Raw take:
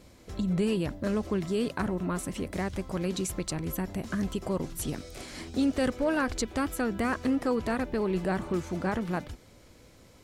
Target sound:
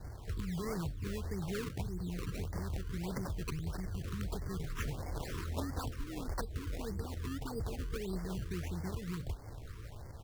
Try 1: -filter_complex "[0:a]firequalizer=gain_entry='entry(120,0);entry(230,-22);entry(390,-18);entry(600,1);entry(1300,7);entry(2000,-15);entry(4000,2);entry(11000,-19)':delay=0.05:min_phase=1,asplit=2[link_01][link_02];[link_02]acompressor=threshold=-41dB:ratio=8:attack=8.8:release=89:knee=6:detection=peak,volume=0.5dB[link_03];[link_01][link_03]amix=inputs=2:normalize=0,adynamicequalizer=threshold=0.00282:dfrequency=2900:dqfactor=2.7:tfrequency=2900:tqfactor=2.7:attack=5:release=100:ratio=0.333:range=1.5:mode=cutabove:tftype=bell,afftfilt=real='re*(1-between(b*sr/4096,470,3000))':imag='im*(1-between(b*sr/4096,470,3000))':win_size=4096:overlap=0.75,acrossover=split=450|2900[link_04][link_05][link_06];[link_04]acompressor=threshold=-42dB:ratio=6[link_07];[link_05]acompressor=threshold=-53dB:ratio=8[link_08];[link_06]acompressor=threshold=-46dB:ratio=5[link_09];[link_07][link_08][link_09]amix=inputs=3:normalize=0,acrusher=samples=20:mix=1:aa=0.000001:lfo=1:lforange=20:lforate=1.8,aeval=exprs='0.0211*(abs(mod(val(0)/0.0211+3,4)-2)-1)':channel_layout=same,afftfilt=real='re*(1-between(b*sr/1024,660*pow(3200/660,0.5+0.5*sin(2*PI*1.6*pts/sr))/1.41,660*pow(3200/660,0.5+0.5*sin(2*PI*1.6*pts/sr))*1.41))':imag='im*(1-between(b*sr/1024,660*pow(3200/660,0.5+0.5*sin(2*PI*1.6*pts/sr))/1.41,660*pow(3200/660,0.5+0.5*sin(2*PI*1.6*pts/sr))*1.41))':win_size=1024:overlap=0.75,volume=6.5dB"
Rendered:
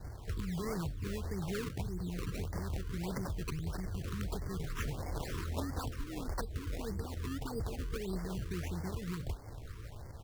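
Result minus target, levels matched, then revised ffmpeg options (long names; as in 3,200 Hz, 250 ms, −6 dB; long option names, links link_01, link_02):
downward compressor: peak gain reduction −9.5 dB
-filter_complex "[0:a]firequalizer=gain_entry='entry(120,0);entry(230,-22);entry(390,-18);entry(600,1);entry(1300,7);entry(2000,-15);entry(4000,2);entry(11000,-19)':delay=0.05:min_phase=1,asplit=2[link_01][link_02];[link_02]acompressor=threshold=-52dB:ratio=8:attack=8.8:release=89:knee=6:detection=peak,volume=0.5dB[link_03];[link_01][link_03]amix=inputs=2:normalize=0,adynamicequalizer=threshold=0.00282:dfrequency=2900:dqfactor=2.7:tfrequency=2900:tqfactor=2.7:attack=5:release=100:ratio=0.333:range=1.5:mode=cutabove:tftype=bell,afftfilt=real='re*(1-between(b*sr/4096,470,3000))':imag='im*(1-between(b*sr/4096,470,3000))':win_size=4096:overlap=0.75,acrossover=split=450|2900[link_04][link_05][link_06];[link_04]acompressor=threshold=-42dB:ratio=6[link_07];[link_05]acompressor=threshold=-53dB:ratio=8[link_08];[link_06]acompressor=threshold=-46dB:ratio=5[link_09];[link_07][link_08][link_09]amix=inputs=3:normalize=0,acrusher=samples=20:mix=1:aa=0.000001:lfo=1:lforange=20:lforate=1.8,aeval=exprs='0.0211*(abs(mod(val(0)/0.0211+3,4)-2)-1)':channel_layout=same,afftfilt=real='re*(1-between(b*sr/1024,660*pow(3200/660,0.5+0.5*sin(2*PI*1.6*pts/sr))/1.41,660*pow(3200/660,0.5+0.5*sin(2*PI*1.6*pts/sr))*1.41))':imag='im*(1-between(b*sr/1024,660*pow(3200/660,0.5+0.5*sin(2*PI*1.6*pts/sr))/1.41,660*pow(3200/660,0.5+0.5*sin(2*PI*1.6*pts/sr))*1.41))':win_size=1024:overlap=0.75,volume=6.5dB"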